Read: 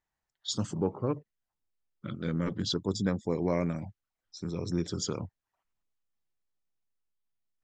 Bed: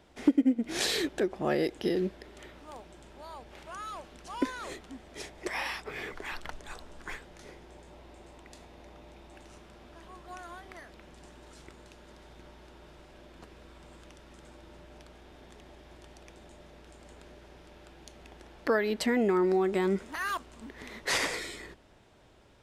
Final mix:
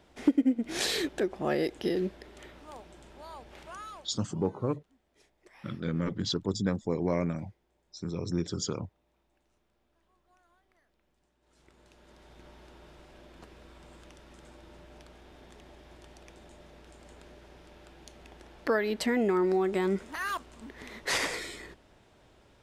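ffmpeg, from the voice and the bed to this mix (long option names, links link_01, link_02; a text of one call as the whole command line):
ffmpeg -i stem1.wav -i stem2.wav -filter_complex "[0:a]adelay=3600,volume=0dB[link_01];[1:a]volume=22dB,afade=type=out:start_time=3.66:duration=0.66:silence=0.0749894,afade=type=in:start_time=11.4:duration=1.16:silence=0.0749894[link_02];[link_01][link_02]amix=inputs=2:normalize=0" out.wav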